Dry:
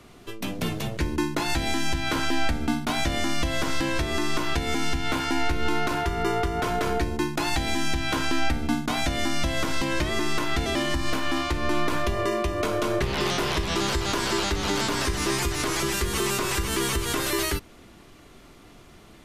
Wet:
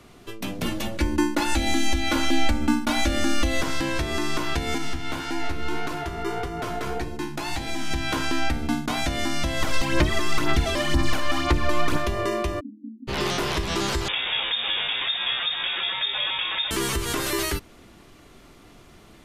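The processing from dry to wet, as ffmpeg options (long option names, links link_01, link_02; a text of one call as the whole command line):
ffmpeg -i in.wav -filter_complex "[0:a]asettb=1/sr,asplit=3[link_01][link_02][link_03];[link_01]atrim=end=0.654[link_04];[link_02]atrim=start=0.65:end=3.61,asetpts=PTS-STARTPTS,afade=type=in:duration=0.004:curve=qsin,afade=type=out:start_time=2.956:duration=0.004:curve=qsin,aecho=1:1:3.5:0.84,atrim=end_sample=130536[link_05];[link_03]atrim=start=3.606[link_06];[link_04][link_05]acrossfade=duration=0.004:curve1=hsin:curve2=qsin[link_07];[link_07][link_06]acrossfade=duration=0.004:curve1=qsin:curve2=hsin,asettb=1/sr,asplit=3[link_08][link_09][link_10];[link_08]atrim=end=4.784[link_11];[link_09]atrim=start=4.78:end=7.91,asetpts=PTS-STARTPTS,afade=type=in:duration=0.004:curve=qsin,afade=type=out:start_time=3.126:duration=0.004:curve=qsin,flanger=delay=5.8:depth=9.3:regen=47:speed=1.7:shape=sinusoidal[link_12];[link_10]atrim=start=7.906[link_13];[link_11][link_12]acrossfade=duration=0.004:curve1=hsin:curve2=qsin[link_14];[link_14][link_13]acrossfade=duration=0.004:curve1=qsin:curve2=hsin,asplit=3[link_15][link_16][link_17];[link_15]afade=type=out:start_time=9.6:duration=0.02[link_18];[link_16]aphaser=in_gain=1:out_gain=1:delay=1.9:decay=0.55:speed=2:type=sinusoidal,afade=type=in:start_time=9.6:duration=0.02,afade=type=out:start_time=11.96:duration=0.02[link_19];[link_17]afade=type=in:start_time=11.96:duration=0.02[link_20];[link_18][link_19][link_20]amix=inputs=3:normalize=0,asplit=3[link_21][link_22][link_23];[link_21]afade=type=out:start_time=12.59:duration=0.02[link_24];[link_22]asuperpass=centerf=250:order=12:qfactor=3.2,afade=type=in:start_time=12.59:duration=0.02,afade=type=out:start_time=13.07:duration=0.02[link_25];[link_23]afade=type=in:start_time=13.07:duration=0.02[link_26];[link_24][link_25][link_26]amix=inputs=3:normalize=0,asettb=1/sr,asplit=3[link_27][link_28][link_29];[link_27]atrim=end=14.084[link_30];[link_28]atrim=start=14.08:end=16.71,asetpts=PTS-STARTPTS,afade=type=in:duration=0.004:curve=qsin,afade=type=out:start_time=2.626:duration=0.004:curve=qsin,lowpass=frequency=3100:width_type=q:width=0.5098,lowpass=frequency=3100:width_type=q:width=0.6013,lowpass=frequency=3100:width_type=q:width=0.9,lowpass=frequency=3100:width_type=q:width=2.563,afreqshift=-3700[link_31];[link_29]atrim=start=16.706[link_32];[link_30][link_31]acrossfade=duration=0.004:curve1=hsin:curve2=qsin[link_33];[link_33][link_32]acrossfade=duration=0.004:curve1=qsin:curve2=hsin" out.wav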